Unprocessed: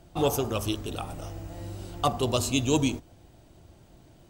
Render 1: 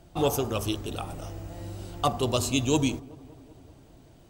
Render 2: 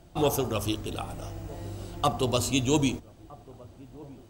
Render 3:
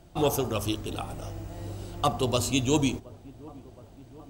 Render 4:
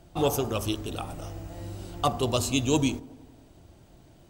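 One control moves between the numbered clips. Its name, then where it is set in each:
delay with a low-pass on its return, delay time: 191, 1,263, 720, 93 milliseconds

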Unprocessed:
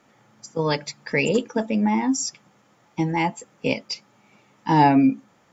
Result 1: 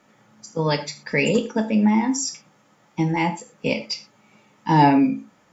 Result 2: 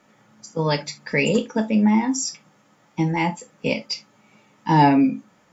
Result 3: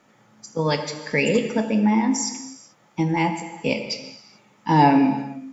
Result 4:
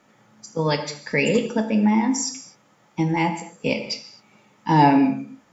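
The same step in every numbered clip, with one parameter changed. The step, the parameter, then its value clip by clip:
reverb whose tail is shaped and stops, gate: 140, 90, 460, 280 milliseconds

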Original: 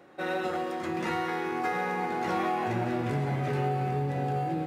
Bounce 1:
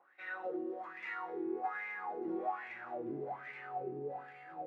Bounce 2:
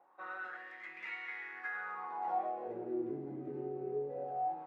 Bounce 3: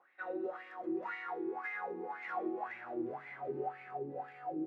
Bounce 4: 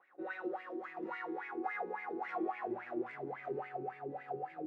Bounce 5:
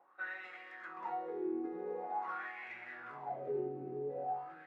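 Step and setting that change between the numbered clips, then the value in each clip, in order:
LFO wah, speed: 1.2, 0.22, 1.9, 3.6, 0.46 Hertz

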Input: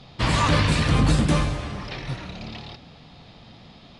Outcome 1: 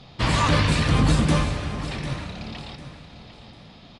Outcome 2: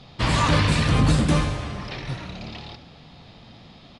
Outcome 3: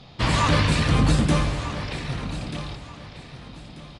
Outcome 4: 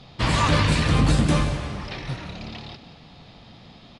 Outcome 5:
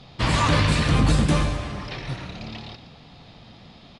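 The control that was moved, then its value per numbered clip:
repeating echo, delay time: 749, 70, 1,238, 176, 118 milliseconds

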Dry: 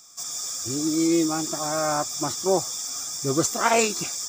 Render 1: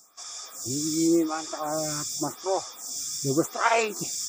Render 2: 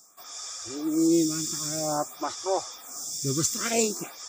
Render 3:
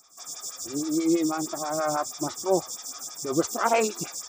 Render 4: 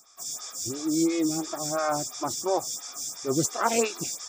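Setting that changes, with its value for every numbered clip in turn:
phaser with staggered stages, speed: 0.89, 0.51, 6.2, 2.9 Hertz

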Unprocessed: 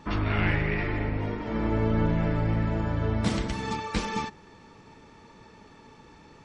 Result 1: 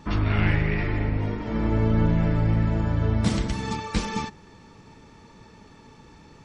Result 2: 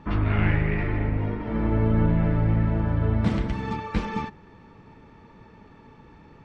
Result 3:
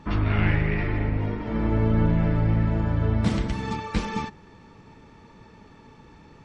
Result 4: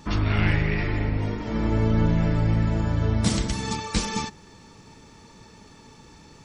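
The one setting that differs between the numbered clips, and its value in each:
bass and treble, treble: +4, −15, −4, +13 decibels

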